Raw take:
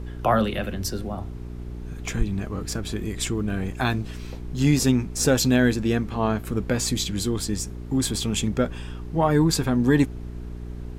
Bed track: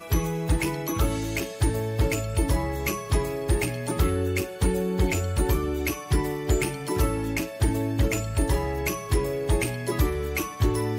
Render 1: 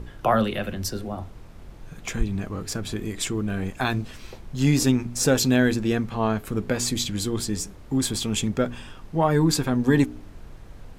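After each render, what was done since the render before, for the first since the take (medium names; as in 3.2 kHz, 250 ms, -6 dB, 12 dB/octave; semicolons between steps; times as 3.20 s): de-hum 60 Hz, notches 7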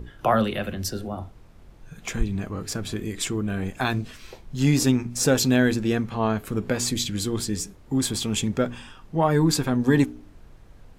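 noise print and reduce 6 dB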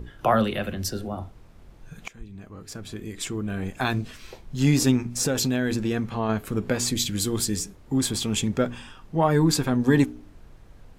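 2.08–3.99 s: fade in, from -22.5 dB; 5.15–6.29 s: compression 5:1, threshold -20 dBFS; 6.98–7.58 s: treble shelf 11 kHz -> 5.7 kHz +9 dB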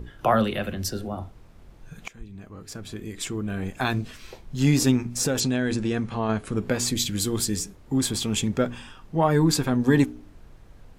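5.40–6.58 s: brick-wall FIR low-pass 11 kHz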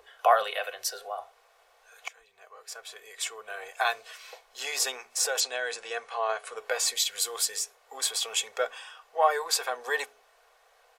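elliptic high-pass 500 Hz, stop band 40 dB; comb 2.7 ms, depth 49%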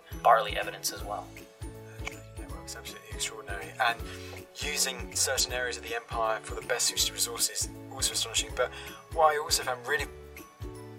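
add bed track -18 dB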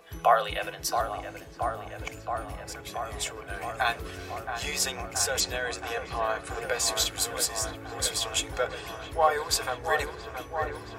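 feedback echo behind a low-pass 674 ms, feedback 78%, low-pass 1.9 kHz, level -7 dB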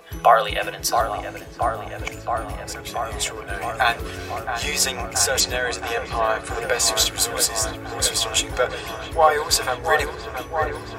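trim +7.5 dB; peak limiter -3 dBFS, peak gain reduction 1.5 dB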